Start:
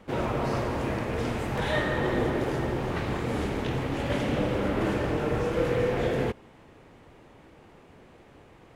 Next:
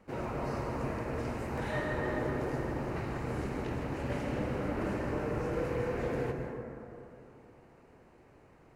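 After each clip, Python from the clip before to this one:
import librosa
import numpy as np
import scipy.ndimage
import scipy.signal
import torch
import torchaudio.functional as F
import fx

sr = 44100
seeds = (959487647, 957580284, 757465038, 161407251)

y = fx.peak_eq(x, sr, hz=3400.0, db=-12.0, octaves=0.28)
y = fx.rev_plate(y, sr, seeds[0], rt60_s=2.9, hf_ratio=0.3, predelay_ms=115, drr_db=3.5)
y = y * librosa.db_to_amplitude(-8.5)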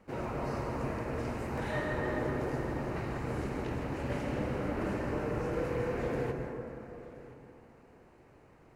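y = x + 10.0 ** (-19.0 / 20.0) * np.pad(x, (int(1025 * sr / 1000.0), 0))[:len(x)]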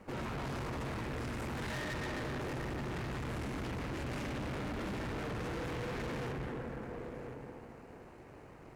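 y = fx.dynamic_eq(x, sr, hz=610.0, q=0.98, threshold_db=-49.0, ratio=4.0, max_db=-7)
y = fx.tube_stage(y, sr, drive_db=46.0, bias=0.65)
y = y * librosa.db_to_amplitude(9.0)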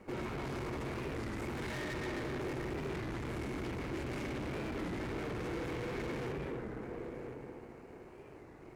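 y = fx.small_body(x, sr, hz=(360.0, 2200.0), ring_ms=25, db=7)
y = fx.record_warp(y, sr, rpm=33.33, depth_cents=160.0)
y = y * librosa.db_to_amplitude(-2.0)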